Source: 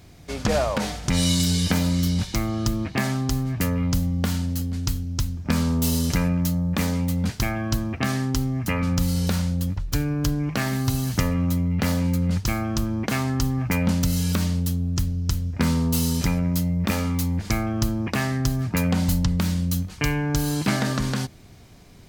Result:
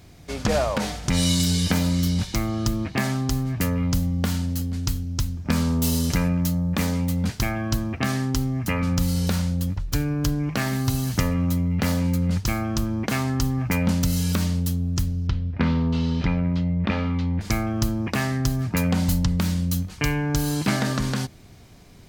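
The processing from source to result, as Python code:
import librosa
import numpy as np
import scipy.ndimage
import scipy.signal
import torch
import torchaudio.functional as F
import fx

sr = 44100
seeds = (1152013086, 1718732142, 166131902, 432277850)

y = fx.lowpass(x, sr, hz=3700.0, slope=24, at=(15.27, 17.41))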